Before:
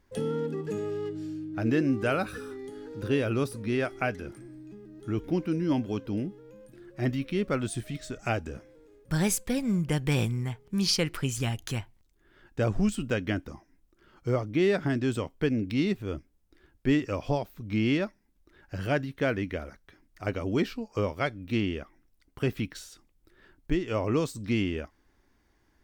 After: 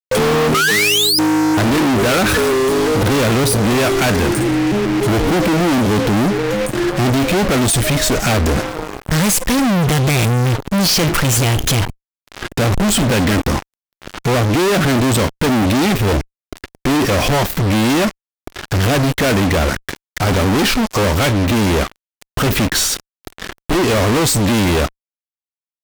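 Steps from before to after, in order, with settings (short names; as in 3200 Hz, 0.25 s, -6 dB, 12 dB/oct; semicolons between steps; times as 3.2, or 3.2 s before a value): painted sound rise, 0.54–1.19, 1200–5200 Hz -29 dBFS; sample leveller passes 2; fuzz box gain 48 dB, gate -56 dBFS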